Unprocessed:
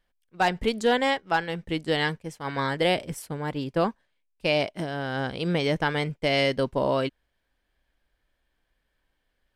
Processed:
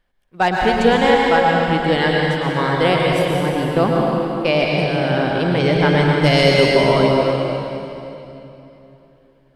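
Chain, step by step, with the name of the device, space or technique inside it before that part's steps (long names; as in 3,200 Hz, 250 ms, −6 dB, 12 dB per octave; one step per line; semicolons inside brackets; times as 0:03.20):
0:06.04–0:06.66: bass and treble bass +3 dB, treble +11 dB
swimming-pool hall (convolution reverb RT60 3.1 s, pre-delay 102 ms, DRR −2.5 dB; high-shelf EQ 3,500 Hz −7 dB)
level +6.5 dB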